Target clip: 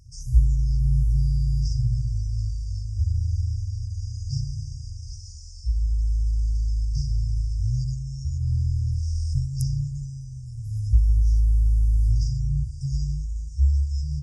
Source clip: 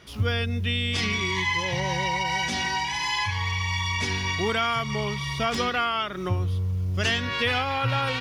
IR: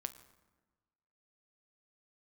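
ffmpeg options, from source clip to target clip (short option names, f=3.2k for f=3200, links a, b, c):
-af "afftfilt=real='re*(1-between(b*sr/4096,260,8100))':imag='im*(1-between(b*sr/4096,260,8100))':win_size=4096:overlap=0.75,asetrate=25442,aresample=44100,volume=8dB"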